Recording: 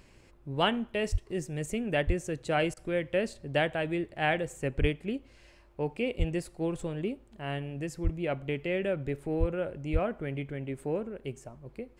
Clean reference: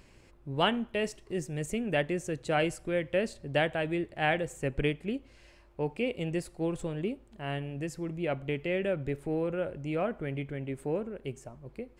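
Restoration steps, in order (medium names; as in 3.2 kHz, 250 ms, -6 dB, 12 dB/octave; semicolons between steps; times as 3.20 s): de-plosive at 1.11/2.06/4.80/6.18/8.03/9.39/9.92 s; interpolate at 2.74 s, 27 ms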